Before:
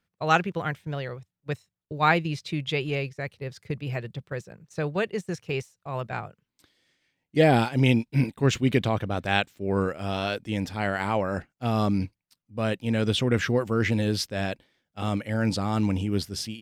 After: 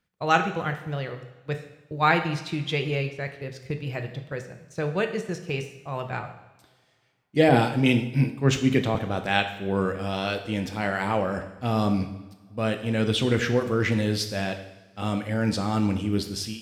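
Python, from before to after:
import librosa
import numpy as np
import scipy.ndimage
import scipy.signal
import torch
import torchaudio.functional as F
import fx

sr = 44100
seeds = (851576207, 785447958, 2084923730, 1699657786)

y = fx.rev_double_slope(x, sr, seeds[0], early_s=0.86, late_s=2.6, knee_db=-21, drr_db=5.5)
y = fx.band_widen(y, sr, depth_pct=40, at=(7.49, 8.95))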